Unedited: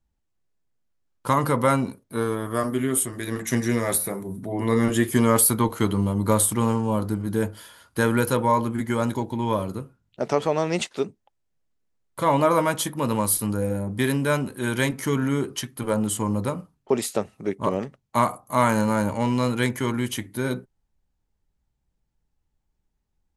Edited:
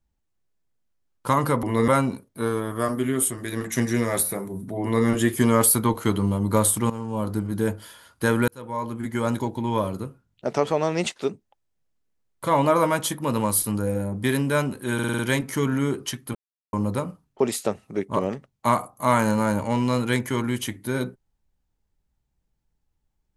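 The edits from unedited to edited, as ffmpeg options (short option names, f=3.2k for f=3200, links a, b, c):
-filter_complex "[0:a]asplit=12[a][b][c][d][e][f][g][h][i][j][k][l];[a]atrim=end=1.632[m];[b]atrim=start=4.558:end=4.812[n];[c]atrim=start=1.628:end=6.65,asetpts=PTS-STARTPTS,afade=t=out:st=5.018:d=0.004:c=hsin:silence=0.199526[o];[d]atrim=start=6.65:end=8.23,asetpts=PTS-STARTPTS,afade=t=in:d=0.47:silence=0.199526,afade=t=out:st=1.576:d=0.004:c=hsin[p];[e]atrim=start=8.23:end=14.742,asetpts=PTS-STARTPTS,afade=t=in:d=0.82[q];[f]atrim=start=14.688:end=14.742[r];[g]atrim=start=14.688:end=14.742[s];[h]atrim=start=14.688:end=14.742[t];[i]atrim=start=14.688:end=14.742[u];[j]atrim=start=14.688:end=15.85,asetpts=PTS-STARTPTS,afade=t=out:st=1.158:d=0.004:c=hsin[v];[k]atrim=start=15.85:end=16.23,asetpts=PTS-STARTPTS,volume=0[w];[l]atrim=start=16.23,asetpts=PTS-STARTPTS,afade=t=in:d=0.004:c=hsin[x];[m][n]acrossfade=d=0.004:c1=hsin:c2=hsin[y];[o][p][q]concat=n=3:v=0:a=1[z];[y][z]acrossfade=d=0.004:c1=hsin:c2=hsin[aa];[aa][r]acrossfade=d=0.004:c1=hsin:c2=hsin[ab];[ab][s]acrossfade=d=0.004:c1=hsin:c2=hsin[ac];[ac][t]acrossfade=d=0.004:c1=hsin:c2=hsin[ad];[ad][u]acrossfade=d=0.004:c1=hsin:c2=hsin[ae];[v][w][x]concat=n=3:v=0:a=1[af];[ae][af]acrossfade=d=0.004:c1=hsin:c2=hsin"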